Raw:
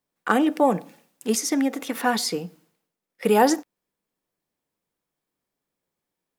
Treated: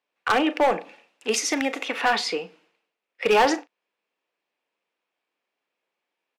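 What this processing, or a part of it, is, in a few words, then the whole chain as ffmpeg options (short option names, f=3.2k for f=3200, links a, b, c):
megaphone: -filter_complex "[0:a]highpass=460,lowpass=3.9k,equalizer=f=2.6k:t=o:w=0.45:g=8.5,asoftclip=type=hard:threshold=-18.5dB,asplit=2[a][b];[b]adelay=38,volume=-13.5dB[c];[a][c]amix=inputs=2:normalize=0,asettb=1/sr,asplit=3[d][e][f];[d]atrim=end=1.324[g];[e]atrim=start=1.32:end=1.83,asetpts=PTS-STARTPTS,afade=t=in:d=0.004:c=qsin,afade=t=out:st=0.506:d=0.004:c=qsin,highshelf=f=6.2k:g=11.5[h];[f]atrim=start=1.826[i];[g][h]acrossfade=d=0.004:c1=hsin:c2=qsin[j];[j][i]acrossfade=d=0.004:c1=qsin:c2=hsin,volume=4dB"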